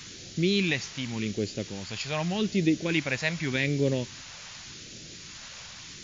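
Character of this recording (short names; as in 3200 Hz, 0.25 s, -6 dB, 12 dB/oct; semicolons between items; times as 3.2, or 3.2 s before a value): a quantiser's noise floor 8-bit, dither triangular; phasing stages 2, 0.85 Hz, lowest notch 320–1000 Hz; MP3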